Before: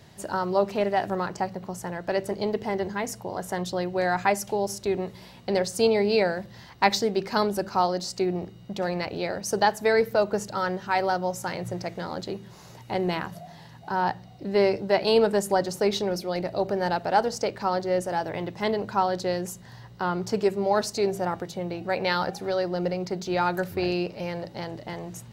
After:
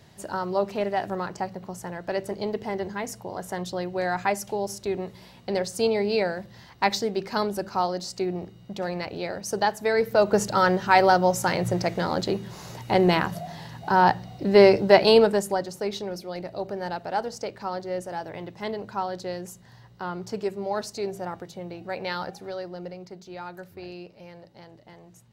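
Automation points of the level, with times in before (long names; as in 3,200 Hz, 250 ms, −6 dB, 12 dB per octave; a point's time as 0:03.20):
0:09.94 −2 dB
0:10.41 +7 dB
0:14.98 +7 dB
0:15.70 −5.5 dB
0:22.23 −5.5 dB
0:23.33 −13.5 dB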